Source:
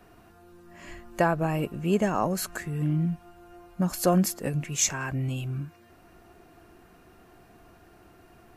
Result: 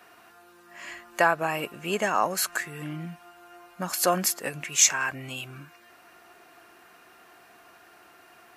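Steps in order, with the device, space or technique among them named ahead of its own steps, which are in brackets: filter by subtraction (in parallel: LPF 1600 Hz 12 dB/oct + phase invert); on the sum: gain +5.5 dB

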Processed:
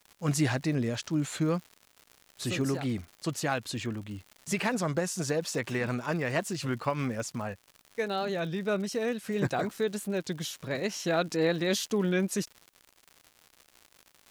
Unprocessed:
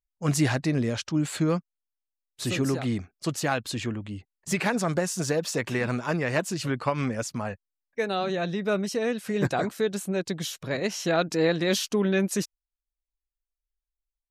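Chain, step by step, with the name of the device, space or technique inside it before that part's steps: warped LP (record warp 33 1/3 rpm, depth 100 cents; crackle 150/s -36 dBFS; white noise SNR 44 dB); gain -3.5 dB

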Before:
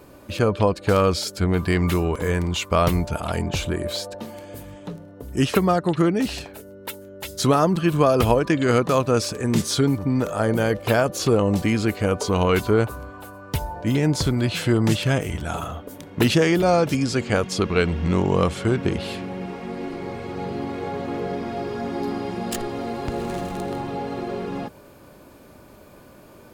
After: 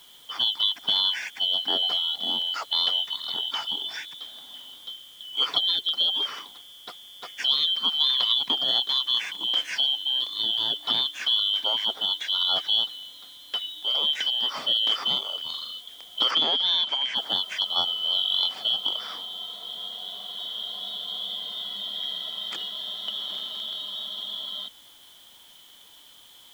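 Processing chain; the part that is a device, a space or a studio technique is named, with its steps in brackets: split-band scrambled radio (four-band scrambler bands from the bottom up 2413; BPF 310–3300 Hz; white noise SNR 28 dB); 16.31–17.16 LPF 6200 Hz 12 dB/oct; notch 370 Hz, Q 12; gain -2.5 dB

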